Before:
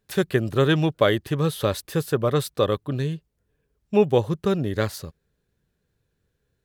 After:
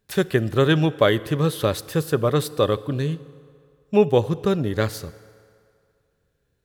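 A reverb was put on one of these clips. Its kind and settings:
feedback delay network reverb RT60 2.3 s, low-frequency decay 0.7×, high-frequency decay 0.75×, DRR 16.5 dB
level +1.5 dB

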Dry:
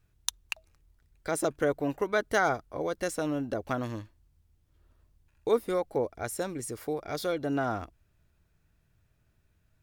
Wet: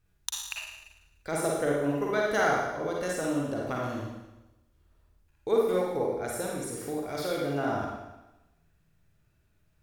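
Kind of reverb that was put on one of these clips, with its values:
four-comb reverb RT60 1 s, DRR −3 dB
level −3.5 dB

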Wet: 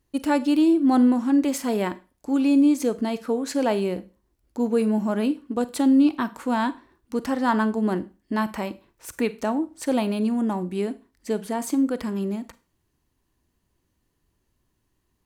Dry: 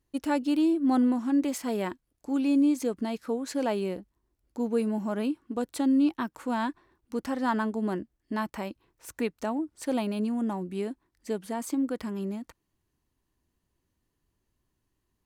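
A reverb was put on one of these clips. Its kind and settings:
four-comb reverb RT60 0.32 s, combs from 33 ms, DRR 14.5 dB
level +5.5 dB

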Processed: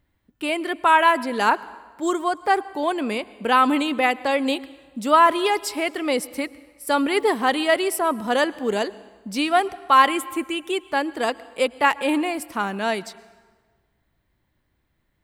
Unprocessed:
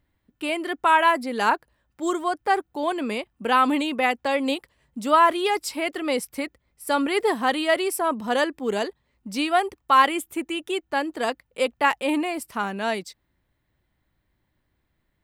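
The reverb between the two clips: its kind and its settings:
dense smooth reverb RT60 1.5 s, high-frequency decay 0.75×, pre-delay 95 ms, DRR 19.5 dB
level +2 dB

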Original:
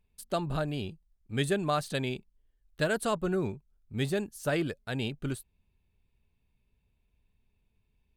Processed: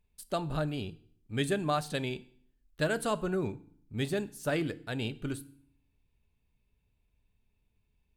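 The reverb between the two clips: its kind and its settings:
feedback delay network reverb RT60 0.57 s, low-frequency decay 1.35×, high-frequency decay 0.95×, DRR 14 dB
level −1.5 dB

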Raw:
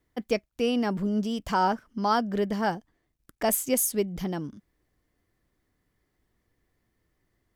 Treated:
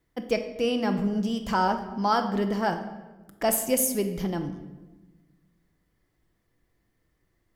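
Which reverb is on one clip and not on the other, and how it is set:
rectangular room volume 700 cubic metres, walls mixed, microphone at 0.72 metres

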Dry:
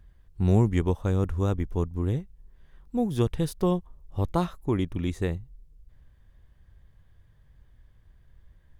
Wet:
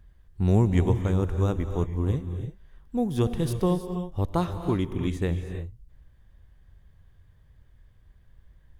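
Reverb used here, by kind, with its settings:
reverb whose tail is shaped and stops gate 350 ms rising, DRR 8 dB

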